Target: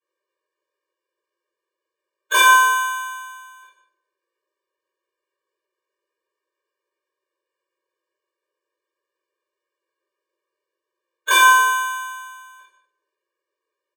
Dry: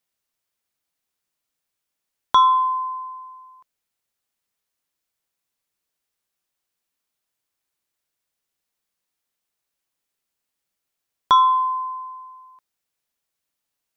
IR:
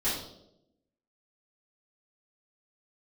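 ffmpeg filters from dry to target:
-filter_complex "[0:a]lowpass=frequency=2900:width=0.5412,lowpass=frequency=2900:width=1.3066,aecho=1:1:5.5:0.53,acrusher=samples=13:mix=1:aa=0.000001,highpass=frequency=52:width=0.5412,highpass=frequency=52:width=1.3066,asplit=2[link_01][link_02];[link_02]adelay=150,highpass=300,lowpass=3400,asoftclip=type=hard:threshold=-14.5dB,volume=-13dB[link_03];[link_01][link_03]amix=inputs=2:normalize=0[link_04];[1:a]atrim=start_sample=2205[link_05];[link_04][link_05]afir=irnorm=-1:irlink=0,asplit=4[link_06][link_07][link_08][link_09];[link_07]asetrate=29433,aresample=44100,atempo=1.49831,volume=-3dB[link_10];[link_08]asetrate=37084,aresample=44100,atempo=1.18921,volume=-15dB[link_11];[link_09]asetrate=66075,aresample=44100,atempo=0.66742,volume=0dB[link_12];[link_06][link_10][link_11][link_12]amix=inputs=4:normalize=0,afftfilt=real='re*eq(mod(floor(b*sr/1024/310),2),1)':imag='im*eq(mod(floor(b*sr/1024/310),2),1)':win_size=1024:overlap=0.75,volume=-4dB"

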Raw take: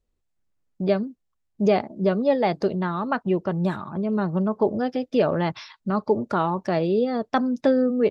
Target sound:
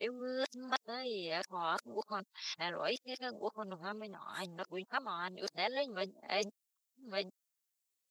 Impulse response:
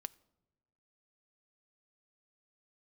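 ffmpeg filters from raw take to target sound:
-af "areverse,aderivative,volume=5dB"

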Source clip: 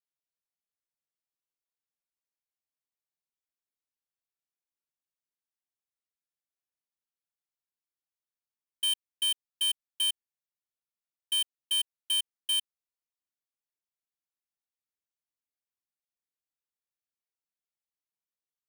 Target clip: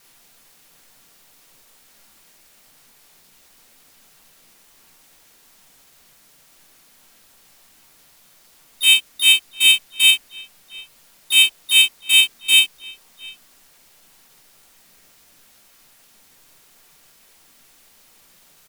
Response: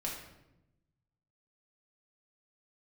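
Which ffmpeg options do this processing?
-filter_complex "[0:a]aeval=exprs='val(0)+0.5*0.002*sgn(val(0))':channel_layout=same,asplit=2[link_01][link_02];[link_02]adelay=699.7,volume=-18dB,highshelf=frequency=4000:gain=-15.7[link_03];[link_01][link_03]amix=inputs=2:normalize=0[link_04];[1:a]atrim=start_sample=2205,atrim=end_sample=3087[link_05];[link_04][link_05]afir=irnorm=-1:irlink=0,asplit=2[link_06][link_07];[link_07]acrusher=bits=4:mode=log:mix=0:aa=0.000001,volume=-10dB[link_08];[link_06][link_08]amix=inputs=2:normalize=0,asplit=4[link_09][link_10][link_11][link_12];[link_10]asetrate=33038,aresample=44100,atempo=1.33484,volume=-12dB[link_13];[link_11]asetrate=37084,aresample=44100,atempo=1.18921,volume=-3dB[link_14];[link_12]asetrate=52444,aresample=44100,atempo=0.840896,volume=-4dB[link_15];[link_09][link_13][link_14][link_15]amix=inputs=4:normalize=0,volume=6dB"

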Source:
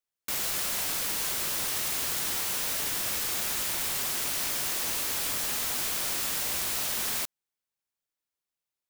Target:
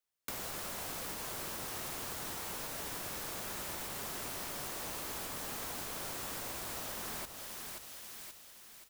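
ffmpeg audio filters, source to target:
ffmpeg -i in.wav -filter_complex "[0:a]alimiter=limit=-20dB:level=0:latency=1:release=460,aecho=1:1:529|1058|1587|2116|2645:0.299|0.131|0.0578|0.0254|0.0112,acrossover=split=120|1400[link_01][link_02][link_03];[link_01]acompressor=threshold=-55dB:ratio=4[link_04];[link_02]acompressor=threshold=-45dB:ratio=4[link_05];[link_03]acompressor=threshold=-44dB:ratio=4[link_06];[link_04][link_05][link_06]amix=inputs=3:normalize=0,volume=1dB" out.wav

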